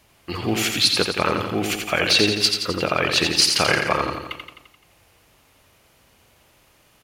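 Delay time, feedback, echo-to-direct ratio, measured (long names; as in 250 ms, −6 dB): 86 ms, 57%, −3.5 dB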